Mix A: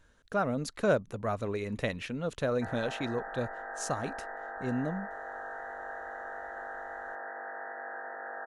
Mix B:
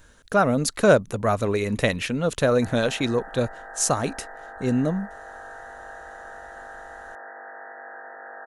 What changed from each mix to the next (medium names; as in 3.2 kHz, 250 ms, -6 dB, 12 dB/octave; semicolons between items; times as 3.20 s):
speech +10.0 dB; master: add treble shelf 7.3 kHz +11.5 dB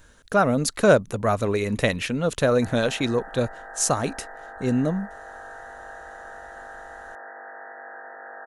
no change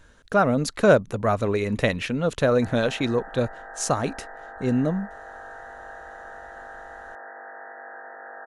master: add treble shelf 7.3 kHz -11.5 dB